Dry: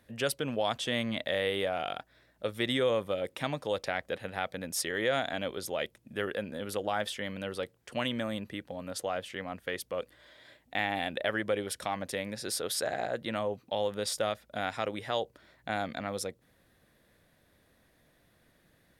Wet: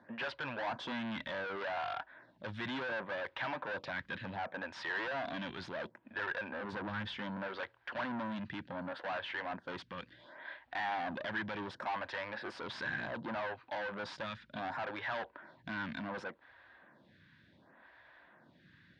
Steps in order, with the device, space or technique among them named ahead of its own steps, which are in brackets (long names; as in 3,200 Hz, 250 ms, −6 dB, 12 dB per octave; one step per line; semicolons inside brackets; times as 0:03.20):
0:06.72–0:07.18: spectral tilt −2.5 dB per octave
vibe pedal into a guitar amplifier (phaser with staggered stages 0.68 Hz; tube saturation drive 44 dB, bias 0.25; loudspeaker in its box 100–4,000 Hz, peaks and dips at 450 Hz −9 dB, 950 Hz +9 dB, 1,600 Hz +9 dB)
level +7 dB